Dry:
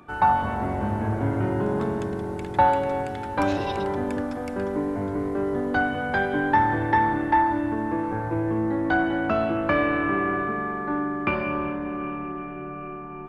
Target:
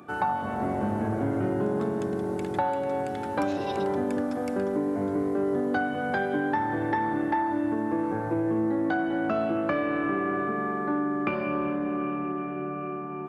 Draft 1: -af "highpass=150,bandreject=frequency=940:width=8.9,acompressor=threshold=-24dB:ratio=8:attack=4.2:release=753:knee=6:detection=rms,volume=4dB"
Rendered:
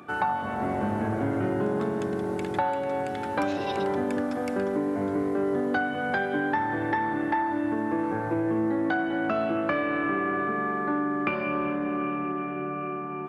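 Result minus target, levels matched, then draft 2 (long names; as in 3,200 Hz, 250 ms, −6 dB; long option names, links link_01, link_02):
2,000 Hz band +2.5 dB
-af "highpass=150,equalizer=frequency=2300:width_type=o:width=2.2:gain=-5,bandreject=frequency=940:width=8.9,acompressor=threshold=-24dB:ratio=8:attack=4.2:release=753:knee=6:detection=rms,volume=4dB"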